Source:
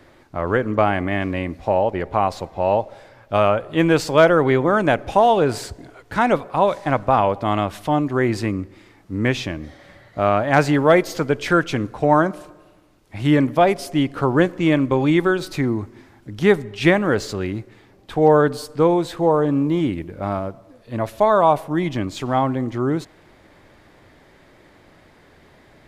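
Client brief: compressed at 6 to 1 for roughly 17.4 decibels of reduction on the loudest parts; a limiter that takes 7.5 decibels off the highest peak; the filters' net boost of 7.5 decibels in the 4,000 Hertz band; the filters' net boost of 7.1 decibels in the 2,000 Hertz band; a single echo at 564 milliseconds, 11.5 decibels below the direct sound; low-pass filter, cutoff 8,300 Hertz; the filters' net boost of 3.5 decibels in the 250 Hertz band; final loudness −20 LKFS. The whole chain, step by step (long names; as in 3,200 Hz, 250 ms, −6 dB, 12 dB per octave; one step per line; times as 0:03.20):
low-pass filter 8,300 Hz
parametric band 250 Hz +4.5 dB
parametric band 2,000 Hz +7.5 dB
parametric band 4,000 Hz +7 dB
downward compressor 6 to 1, threshold −26 dBFS
brickwall limiter −18.5 dBFS
single-tap delay 564 ms −11.5 dB
level +11 dB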